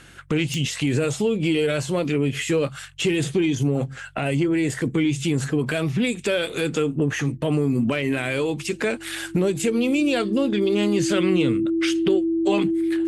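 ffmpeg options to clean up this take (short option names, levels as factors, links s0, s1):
-af "adeclick=t=4,bandreject=f=46.5:t=h:w=4,bandreject=f=93:t=h:w=4,bandreject=f=139.5:t=h:w=4,bandreject=f=330:w=30"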